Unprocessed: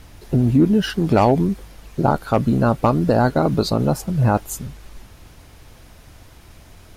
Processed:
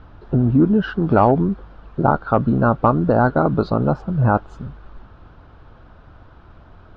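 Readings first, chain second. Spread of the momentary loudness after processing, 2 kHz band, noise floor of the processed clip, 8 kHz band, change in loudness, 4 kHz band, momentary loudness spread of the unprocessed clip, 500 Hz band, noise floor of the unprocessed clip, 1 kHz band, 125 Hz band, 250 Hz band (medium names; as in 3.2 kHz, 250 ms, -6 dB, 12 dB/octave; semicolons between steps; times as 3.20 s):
11 LU, +2.0 dB, -46 dBFS, under -30 dB, +0.5 dB, under -10 dB, 11 LU, +0.5 dB, -46 dBFS, +2.0 dB, 0.0 dB, 0.0 dB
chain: low-pass 3.6 kHz 24 dB/octave; resonant high shelf 1.7 kHz -6 dB, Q 3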